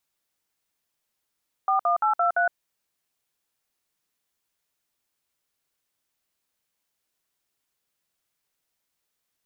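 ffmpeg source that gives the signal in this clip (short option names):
-f lavfi -i "aevalsrc='0.0841*clip(min(mod(t,0.171),0.114-mod(t,0.171))/0.002,0,1)*(eq(floor(t/0.171),0)*(sin(2*PI*770*mod(t,0.171))+sin(2*PI*1209*mod(t,0.171)))+eq(floor(t/0.171),1)*(sin(2*PI*697*mod(t,0.171))+sin(2*PI*1209*mod(t,0.171)))+eq(floor(t/0.171),2)*(sin(2*PI*852*mod(t,0.171))+sin(2*PI*1336*mod(t,0.171)))+eq(floor(t/0.171),3)*(sin(2*PI*697*mod(t,0.171))+sin(2*PI*1336*mod(t,0.171)))+eq(floor(t/0.171),4)*(sin(2*PI*697*mod(t,0.171))+sin(2*PI*1477*mod(t,0.171))))':d=0.855:s=44100"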